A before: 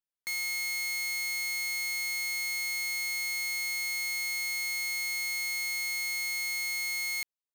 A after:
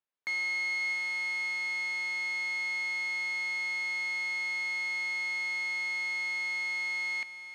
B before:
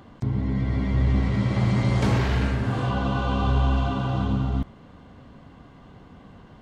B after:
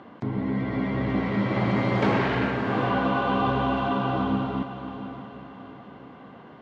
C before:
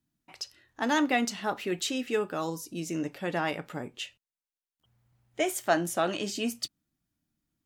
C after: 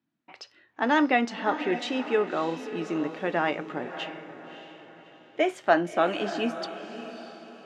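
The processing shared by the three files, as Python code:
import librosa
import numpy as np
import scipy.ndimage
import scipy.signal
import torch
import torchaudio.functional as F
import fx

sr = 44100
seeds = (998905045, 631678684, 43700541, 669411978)

y = fx.bandpass_edges(x, sr, low_hz=230.0, high_hz=2700.0)
y = fx.echo_diffused(y, sr, ms=611, feedback_pct=41, wet_db=-11)
y = y * librosa.db_to_amplitude(4.5)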